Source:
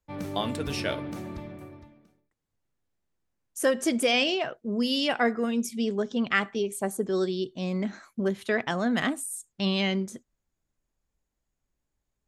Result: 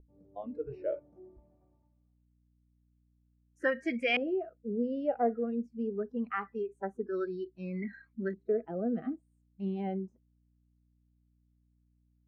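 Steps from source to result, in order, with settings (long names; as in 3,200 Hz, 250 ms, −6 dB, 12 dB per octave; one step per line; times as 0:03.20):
mains hum 60 Hz, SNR 11 dB
noise reduction from a noise print of the clip's start 22 dB
auto-filter low-pass saw up 0.24 Hz 420–2,300 Hz
level −7.5 dB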